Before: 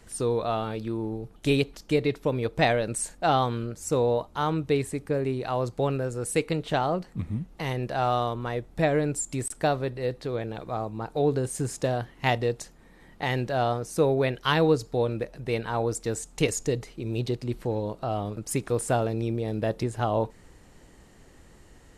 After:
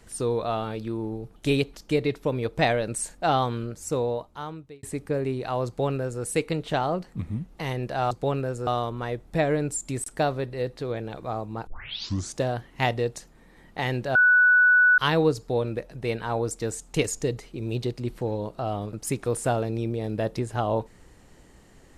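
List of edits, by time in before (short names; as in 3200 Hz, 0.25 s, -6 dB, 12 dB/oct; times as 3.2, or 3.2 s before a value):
3.75–4.83 fade out
5.67–6.23 copy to 8.11
11.11 tape start 0.70 s
13.59–14.42 bleep 1480 Hz -14 dBFS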